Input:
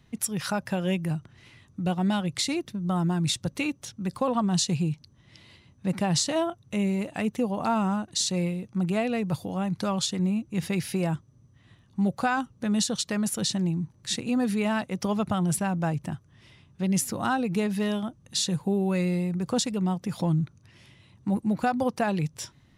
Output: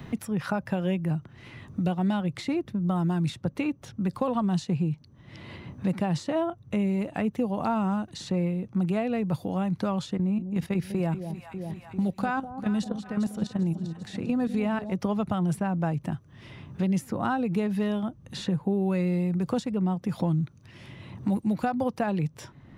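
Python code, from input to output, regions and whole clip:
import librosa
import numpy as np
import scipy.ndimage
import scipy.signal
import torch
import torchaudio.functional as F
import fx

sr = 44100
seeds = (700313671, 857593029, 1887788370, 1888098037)

y = fx.chain(x, sr, fx.peak_eq(hz=64.0, db=4.5, octaves=1.4),
    fx.level_steps(step_db=13),
    fx.echo_alternate(ms=198, hz=820.0, feedback_pct=65, wet_db=-11), at=(10.17, 14.92))
y = fx.peak_eq(y, sr, hz=8100.0, db=-12.5, octaves=2.7)
y = fx.band_squash(y, sr, depth_pct=70)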